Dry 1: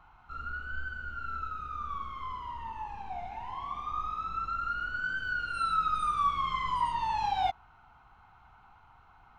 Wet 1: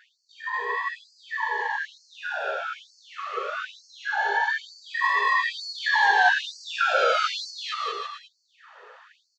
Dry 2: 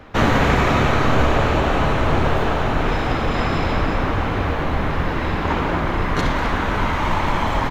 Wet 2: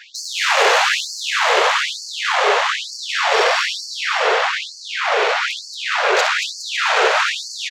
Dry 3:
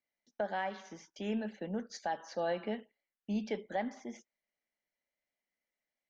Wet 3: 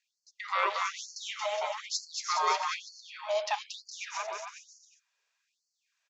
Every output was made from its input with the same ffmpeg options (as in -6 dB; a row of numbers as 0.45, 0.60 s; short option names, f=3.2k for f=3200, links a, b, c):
-filter_complex "[0:a]highshelf=f=2.6k:g=9.5,aresample=16000,asoftclip=type=tanh:threshold=-15dB,aresample=44100,aeval=exprs='val(0)*sin(2*PI*410*n/s)':c=same,aeval=exprs='0.188*(cos(1*acos(clip(val(0)/0.188,-1,1)))-cos(1*PI/2))+0.0168*(cos(5*acos(clip(val(0)/0.188,-1,1)))-cos(5*PI/2))+0.00376*(cos(7*acos(clip(val(0)/0.188,-1,1)))-cos(7*PI/2))':c=same,asplit=2[a][b];[b]aecho=0:1:230|414|561.2|679|773.2:0.631|0.398|0.251|0.158|0.1[c];[a][c]amix=inputs=2:normalize=0,afftfilt=real='re*gte(b*sr/1024,380*pow(4300/380,0.5+0.5*sin(2*PI*1.1*pts/sr)))':imag='im*gte(b*sr/1024,380*pow(4300/380,0.5+0.5*sin(2*PI*1.1*pts/sr)))':win_size=1024:overlap=0.75,volume=8dB"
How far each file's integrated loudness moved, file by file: +8.0, +2.5, +5.5 LU